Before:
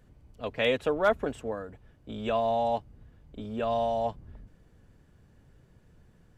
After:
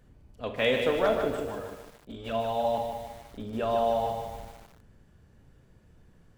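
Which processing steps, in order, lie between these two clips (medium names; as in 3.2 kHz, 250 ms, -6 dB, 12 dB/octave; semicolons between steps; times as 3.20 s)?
1.05–2.65 s: touch-sensitive flanger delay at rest 6.6 ms, full sweep at -23.5 dBFS; Schroeder reverb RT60 0.6 s, combs from 28 ms, DRR 6.5 dB; bit-crushed delay 151 ms, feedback 55%, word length 8-bit, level -6 dB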